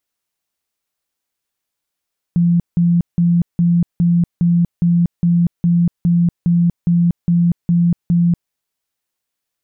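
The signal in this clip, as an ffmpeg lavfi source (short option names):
-f lavfi -i "aevalsrc='0.316*sin(2*PI*172*mod(t,0.41))*lt(mod(t,0.41),41/172)':d=6.15:s=44100"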